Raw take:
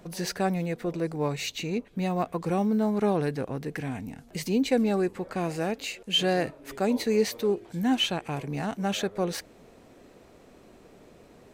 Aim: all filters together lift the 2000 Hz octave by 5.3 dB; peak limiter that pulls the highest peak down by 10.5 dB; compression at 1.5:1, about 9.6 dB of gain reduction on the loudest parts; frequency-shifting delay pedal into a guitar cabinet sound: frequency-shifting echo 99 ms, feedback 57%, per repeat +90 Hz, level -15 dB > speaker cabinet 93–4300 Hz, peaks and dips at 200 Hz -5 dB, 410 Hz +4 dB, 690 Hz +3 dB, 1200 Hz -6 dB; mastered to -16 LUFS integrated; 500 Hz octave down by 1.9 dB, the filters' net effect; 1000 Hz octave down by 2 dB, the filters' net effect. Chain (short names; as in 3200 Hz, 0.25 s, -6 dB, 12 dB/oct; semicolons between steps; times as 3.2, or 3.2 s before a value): bell 500 Hz -5.5 dB; bell 1000 Hz -3 dB; bell 2000 Hz +8.5 dB; compressor 1.5:1, threshold -45 dBFS; limiter -31 dBFS; frequency-shifting echo 99 ms, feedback 57%, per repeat +90 Hz, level -15 dB; speaker cabinet 93–4300 Hz, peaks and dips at 200 Hz -5 dB, 410 Hz +4 dB, 690 Hz +3 dB, 1200 Hz -6 dB; gain +24.5 dB